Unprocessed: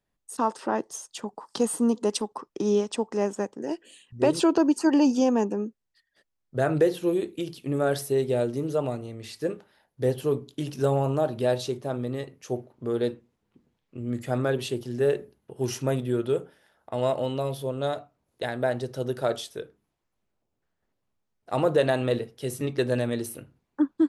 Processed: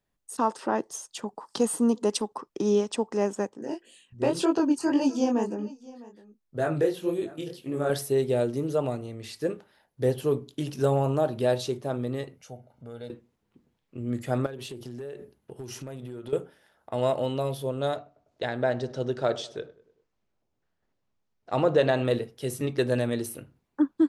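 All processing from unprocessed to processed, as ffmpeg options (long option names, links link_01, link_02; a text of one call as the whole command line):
ffmpeg -i in.wav -filter_complex "[0:a]asettb=1/sr,asplit=3[link_01][link_02][link_03];[link_01]atrim=end=3.494[link_04];[link_02]atrim=start=3.49:end=7.9,asetpts=PTS-STARTPTS,afade=type=in:duration=0.004:curve=qsin,afade=type=out:start_time=4.406:duration=0.004:curve=qsin,flanger=delay=18:depth=7.1:speed=1.9,aecho=1:1:656:0.0944,atrim=end_sample=194481[link_05];[link_03]atrim=start=7.896[link_06];[link_04][link_05]acrossfade=duration=0.004:curve1=hsin:curve2=qsin[link_07];[link_07][link_06]acrossfade=duration=0.004:curve1=qsin:curve2=hsin,asettb=1/sr,asplit=3[link_08][link_09][link_10];[link_08]atrim=end=12.374[link_11];[link_09]atrim=start=12.37:end=13.1,asetpts=PTS-STARTPTS,afade=type=in:duration=0.004:curve=qsin,afade=type=out:start_time=0.726:duration=0.004:curve=qsin,aecho=1:1:1.4:0.73,atrim=end_sample=32193,acompressor=threshold=-59dB:ratio=1.5:attack=3.2:release=140:knee=1:detection=peak[link_12];[link_10]atrim=start=13.096[link_13];[link_11][link_12]acrossfade=duration=0.004:curve1=hsin:curve2=qsin[link_14];[link_14][link_13]acrossfade=duration=0.004:curve1=qsin:curve2=hsin,asettb=1/sr,asplit=3[link_15][link_16][link_17];[link_15]atrim=end=14.464[link_18];[link_16]atrim=start=14.46:end=16.33,asetpts=PTS-STARTPTS,afade=type=in:duration=0.004:curve=qsin,afade=type=out:start_time=1.866:duration=0.004:curve=qsin,acompressor=threshold=-34dB:ratio=16:attack=3.2:release=140:knee=1:detection=peak,asoftclip=type=hard:threshold=-31.5dB[link_19];[link_17]atrim=start=16.326[link_20];[link_18][link_19]acrossfade=duration=0.004:curve1=hsin:curve2=qsin[link_21];[link_21][link_20]acrossfade=duration=0.004:curve1=qsin:curve2=hsin,asettb=1/sr,asplit=3[link_22][link_23][link_24];[link_22]atrim=end=17.964[link_25];[link_23]atrim=start=17.96:end=22.05,asetpts=PTS-STARTPTS,afade=type=in:duration=0.004:curve=qsin,afade=type=out:start_time=4.086:duration=0.004:curve=qsin,lowpass=frequency=7000:width=0.5412,lowpass=frequency=7000:width=1.3066,asplit=2[link_26][link_27];[link_27]adelay=100,lowpass=frequency=1900:poles=1,volume=-19dB,asplit=2[link_28][link_29];[link_29]adelay=100,lowpass=frequency=1900:poles=1,volume=0.54,asplit=2[link_30][link_31];[link_31]adelay=100,lowpass=frequency=1900:poles=1,volume=0.54,asplit=2[link_32][link_33];[link_33]adelay=100,lowpass=frequency=1900:poles=1,volume=0.54[link_34];[link_26][link_28][link_30][link_32][link_34]amix=inputs=5:normalize=0,atrim=end_sample=180369[link_35];[link_24]atrim=start=22.046[link_36];[link_25][link_35]acrossfade=duration=0.004:curve1=hsin:curve2=qsin[link_37];[link_37][link_36]acrossfade=duration=0.004:curve1=qsin:curve2=hsin" out.wav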